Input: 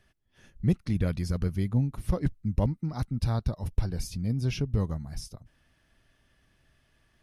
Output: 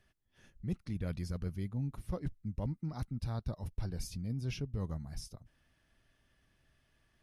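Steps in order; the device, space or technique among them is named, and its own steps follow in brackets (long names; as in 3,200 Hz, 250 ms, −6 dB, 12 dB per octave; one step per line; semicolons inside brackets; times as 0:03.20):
compression on the reversed sound (reversed playback; downward compressor 6 to 1, threshold −27 dBFS, peak gain reduction 9 dB; reversed playback)
level −5.5 dB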